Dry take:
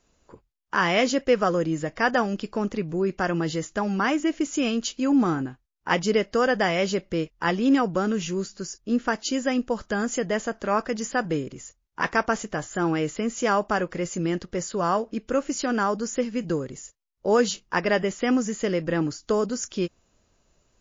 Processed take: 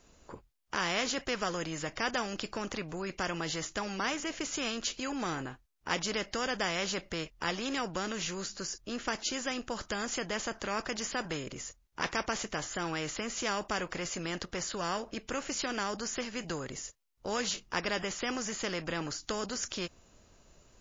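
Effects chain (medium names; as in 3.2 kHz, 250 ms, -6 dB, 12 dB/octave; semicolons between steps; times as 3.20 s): spectrum-flattening compressor 2:1; trim -7 dB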